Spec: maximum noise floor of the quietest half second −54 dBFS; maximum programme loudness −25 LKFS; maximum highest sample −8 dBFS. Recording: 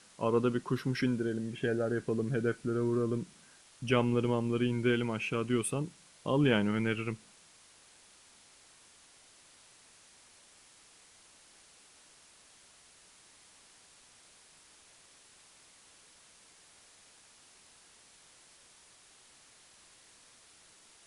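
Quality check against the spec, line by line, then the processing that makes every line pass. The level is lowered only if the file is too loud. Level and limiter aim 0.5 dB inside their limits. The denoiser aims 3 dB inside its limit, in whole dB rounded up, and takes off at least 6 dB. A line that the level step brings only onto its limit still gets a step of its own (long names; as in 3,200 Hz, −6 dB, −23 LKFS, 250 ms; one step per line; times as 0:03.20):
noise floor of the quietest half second −60 dBFS: in spec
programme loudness −32.0 LKFS: in spec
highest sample −13.5 dBFS: in spec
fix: no processing needed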